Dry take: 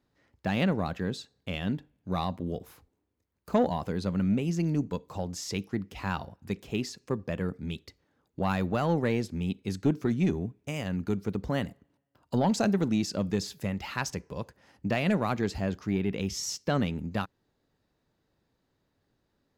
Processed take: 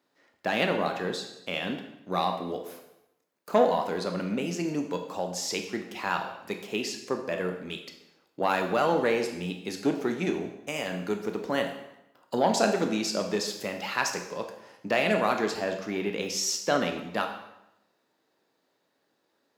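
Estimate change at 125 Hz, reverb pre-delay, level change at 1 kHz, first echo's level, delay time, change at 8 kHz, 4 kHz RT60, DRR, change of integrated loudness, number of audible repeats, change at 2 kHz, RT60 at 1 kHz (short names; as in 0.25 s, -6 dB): -8.5 dB, 16 ms, +5.5 dB, none, none, +5.5 dB, 0.75 s, 4.0 dB, +1.5 dB, none, +6.0 dB, 0.90 s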